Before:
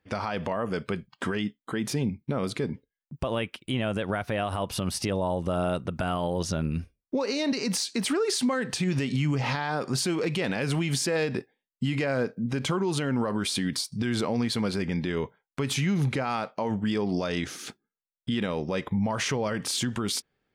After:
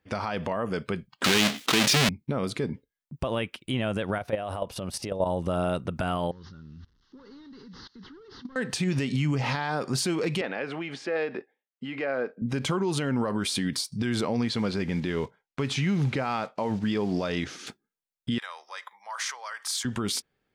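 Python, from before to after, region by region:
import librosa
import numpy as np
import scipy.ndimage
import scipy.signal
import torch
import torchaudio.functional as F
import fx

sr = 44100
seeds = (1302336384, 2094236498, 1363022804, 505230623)

y = fx.chain(x, sr, fx.halfwave_hold(),
    fx.weighting(curve='D'),
    fx.env_flatten(amount_pct=70), at=(1.24, 2.09))
y = fx.chain(y, sr, fx.peak_eq(hz=570.0, db=7.5, octaves=0.9),
    fx.level_steps(step_db=11), at=(4.18, 5.26))
y = fx.chain(y, sr, fx.delta_mod(bps=32000, step_db=-44.5),
    fx.level_steps(step_db=22),
    fx.fixed_phaser(hz=2400.0, stages=6), at=(6.31, 8.56))
y = fx.chain(y, sr, fx.bandpass_edges(low_hz=370.0, high_hz=2300.0),
    fx.notch(hz=980.0, q=12.0), at=(10.41, 12.42))
y = fx.chain(y, sr, fx.block_float(bits=5),
    fx.lowpass(hz=5700.0, slope=12), at=(14.49, 17.67))
y = fx.chain(y, sr, fx.highpass(hz=970.0, slope=24),
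    fx.peak_eq(hz=2700.0, db=-9.5, octaves=0.51), at=(18.38, 19.85))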